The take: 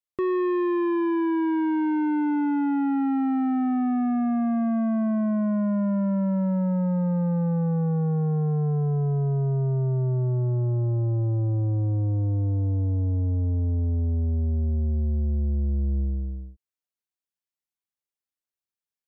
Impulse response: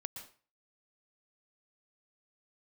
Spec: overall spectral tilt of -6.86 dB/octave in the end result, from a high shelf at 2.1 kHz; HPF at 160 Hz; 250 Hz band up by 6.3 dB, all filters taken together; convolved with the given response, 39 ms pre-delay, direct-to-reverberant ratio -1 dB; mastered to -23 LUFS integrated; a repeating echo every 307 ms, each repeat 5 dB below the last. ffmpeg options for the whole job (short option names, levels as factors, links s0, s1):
-filter_complex "[0:a]highpass=160,equalizer=f=250:t=o:g=9,highshelf=f=2100:g=6,aecho=1:1:307|614|921|1228|1535|1842|2149:0.562|0.315|0.176|0.0988|0.0553|0.031|0.0173,asplit=2[s0][s1];[1:a]atrim=start_sample=2205,adelay=39[s2];[s1][s2]afir=irnorm=-1:irlink=0,volume=1.5[s3];[s0][s3]amix=inputs=2:normalize=0,volume=0.422"